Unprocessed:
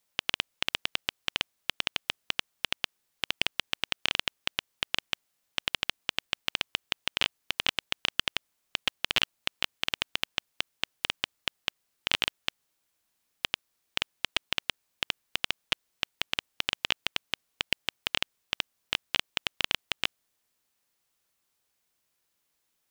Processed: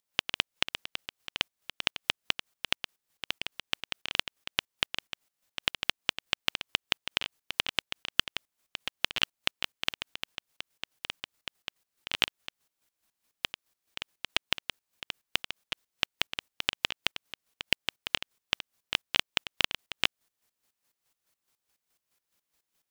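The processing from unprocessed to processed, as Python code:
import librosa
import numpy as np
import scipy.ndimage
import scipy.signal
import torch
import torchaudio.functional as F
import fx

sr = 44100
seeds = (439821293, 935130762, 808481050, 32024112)

y = fx.volume_shaper(x, sr, bpm=142, per_beat=2, depth_db=-14, release_ms=138.0, shape='slow start')
y = y * librosa.db_to_amplitude(3.0)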